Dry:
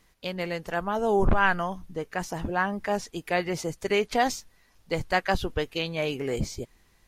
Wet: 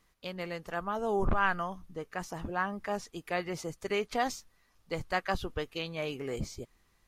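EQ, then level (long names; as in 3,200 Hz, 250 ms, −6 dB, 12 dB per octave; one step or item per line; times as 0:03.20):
parametric band 1,200 Hz +6.5 dB 0.25 octaves
−7.0 dB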